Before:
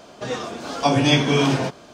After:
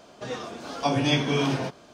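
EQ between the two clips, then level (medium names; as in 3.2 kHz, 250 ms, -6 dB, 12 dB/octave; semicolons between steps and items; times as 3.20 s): dynamic bell 7.5 kHz, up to -6 dB, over -51 dBFS, Q 4.1; -6.0 dB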